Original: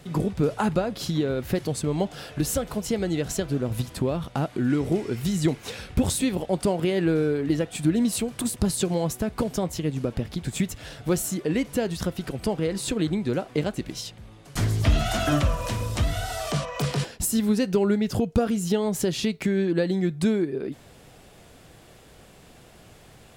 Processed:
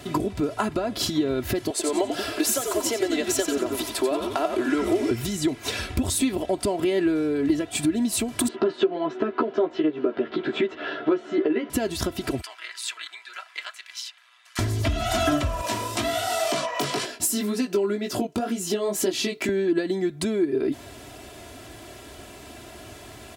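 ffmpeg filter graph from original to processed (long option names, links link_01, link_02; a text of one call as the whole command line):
ffmpeg -i in.wav -filter_complex "[0:a]asettb=1/sr,asplit=3[link_01][link_02][link_03];[link_01]atrim=end=1.704[link_04];[link_02]atrim=start=1.7:end=5.11,asetpts=PTS-STARTPTS,afade=type=in:duration=0.004:curve=qsin,afade=type=out:start_time=3.406:duration=0.004:curve=qsin,highpass=frequency=370:width=0.5412,highpass=frequency=370:width=1.3066,asplit=6[link_05][link_06][link_07][link_08][link_09][link_10];[link_06]adelay=90,afreqshift=-94,volume=-6dB[link_11];[link_07]adelay=180,afreqshift=-188,volume=-12.9dB[link_12];[link_08]adelay=270,afreqshift=-282,volume=-19.9dB[link_13];[link_09]adelay=360,afreqshift=-376,volume=-26.8dB[link_14];[link_10]adelay=450,afreqshift=-470,volume=-33.7dB[link_15];[link_05][link_11][link_12][link_13][link_14][link_15]amix=inputs=6:normalize=0,atrim=end_sample=150381[link_16];[link_03]atrim=start=5.106[link_17];[link_04][link_16]acrossfade=duration=0.004:curve1=hsin:curve2=qsin[link_18];[link_18][link_17]acrossfade=duration=0.004:curve1=qsin:curve2=hsin,asettb=1/sr,asplit=3[link_19][link_20][link_21];[link_19]atrim=end=8.484[link_22];[link_20]atrim=start=8.48:end=11.7,asetpts=PTS-STARTPTS,afade=type=in:duration=0.004:curve=qsin,afade=type=out:start_time=3.216:duration=0.004:curve=qsin,highpass=frequency=210:width=0.5412,highpass=frequency=210:width=1.3066,equalizer=frequency=240:width_type=q:width=4:gain=-5,equalizer=frequency=400:width_type=q:width=4:gain=8,equalizer=frequency=1400:width_type=q:width=4:gain=6,equalizer=frequency=2300:width_type=q:width=4:gain=-5,lowpass=frequency=3000:width=0.5412,lowpass=frequency=3000:width=1.3066,asplit=2[link_23][link_24];[link_24]adelay=13,volume=-2dB[link_25];[link_23][link_25]amix=inputs=2:normalize=0,atrim=end_sample=142002[link_26];[link_21]atrim=start=11.696[link_27];[link_22][link_26]acrossfade=duration=0.004:curve1=hsin:curve2=qsin[link_28];[link_28][link_27]acrossfade=duration=0.004:curve1=qsin:curve2=hsin,asettb=1/sr,asplit=3[link_29][link_30][link_31];[link_29]atrim=end=12.414[link_32];[link_30]atrim=start=12.41:end=14.59,asetpts=PTS-STARTPTS,afade=type=in:duration=0.004:curve=qsin,afade=type=out:start_time=2.176:duration=0.004:curve=qsin,highpass=frequency=1300:width=0.5412,highpass=frequency=1300:width=1.3066,highshelf=frequency=5100:gain=-11,tremolo=f=120:d=0.75[link_33];[link_31]atrim=start=14.586[link_34];[link_32][link_33]acrossfade=duration=0.004:curve1=hsin:curve2=qsin[link_35];[link_35][link_34]acrossfade=duration=0.004:curve1=qsin:curve2=hsin,asettb=1/sr,asplit=3[link_36][link_37][link_38];[link_36]atrim=end=15.614[link_39];[link_37]atrim=start=15.61:end=19.49,asetpts=PTS-STARTPTS,afade=type=in:duration=0.004:curve=qsin,afade=type=out:start_time=3.876:duration=0.004:curve=qsin,highpass=220,flanger=delay=16:depth=4.8:speed=2[link_40];[link_38]atrim=start=19.486[link_41];[link_39][link_40]acrossfade=duration=0.004:curve1=hsin:curve2=qsin[link_42];[link_42][link_41]acrossfade=duration=0.004:curve1=qsin:curve2=hsin,acompressor=threshold=-29dB:ratio=6,highpass=64,aecho=1:1:3:0.73,volume=7dB" out.wav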